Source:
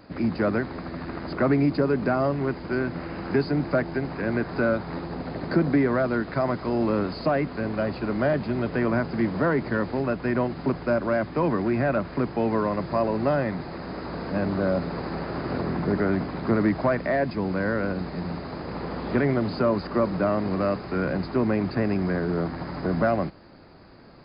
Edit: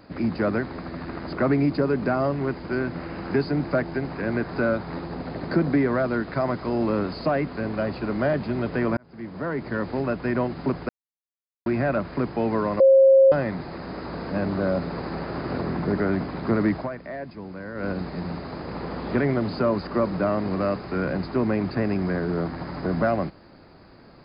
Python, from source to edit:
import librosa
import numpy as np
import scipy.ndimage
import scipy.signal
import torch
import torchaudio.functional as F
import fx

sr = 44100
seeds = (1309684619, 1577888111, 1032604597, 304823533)

y = fx.edit(x, sr, fx.fade_in_span(start_s=8.97, length_s=1.01),
    fx.silence(start_s=10.89, length_s=0.77),
    fx.bleep(start_s=12.8, length_s=0.52, hz=537.0, db=-10.5),
    fx.fade_down_up(start_s=16.75, length_s=1.13, db=-10.5, fade_s=0.14), tone=tone)